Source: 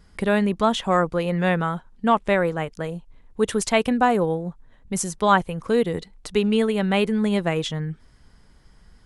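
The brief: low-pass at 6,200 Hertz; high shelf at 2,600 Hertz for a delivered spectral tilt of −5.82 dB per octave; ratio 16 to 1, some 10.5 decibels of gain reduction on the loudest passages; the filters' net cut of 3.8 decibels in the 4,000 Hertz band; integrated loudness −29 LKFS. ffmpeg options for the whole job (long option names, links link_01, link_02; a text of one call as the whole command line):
ffmpeg -i in.wav -af "lowpass=6200,highshelf=frequency=2600:gain=3.5,equalizer=frequency=4000:width_type=o:gain=-8,acompressor=threshold=-23dB:ratio=16,volume=0.5dB" out.wav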